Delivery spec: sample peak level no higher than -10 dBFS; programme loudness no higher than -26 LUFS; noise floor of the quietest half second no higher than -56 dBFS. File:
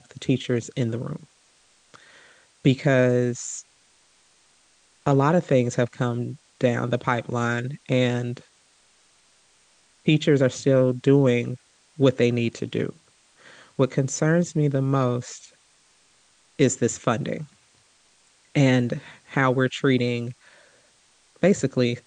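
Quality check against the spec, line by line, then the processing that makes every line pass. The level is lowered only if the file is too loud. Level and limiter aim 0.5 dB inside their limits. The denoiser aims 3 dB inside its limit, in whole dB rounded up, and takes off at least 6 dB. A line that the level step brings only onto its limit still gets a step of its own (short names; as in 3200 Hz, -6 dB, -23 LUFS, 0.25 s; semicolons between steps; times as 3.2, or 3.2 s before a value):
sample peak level -5.0 dBFS: fail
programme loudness -23.0 LUFS: fail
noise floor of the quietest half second -60 dBFS: OK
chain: gain -3.5 dB; limiter -10.5 dBFS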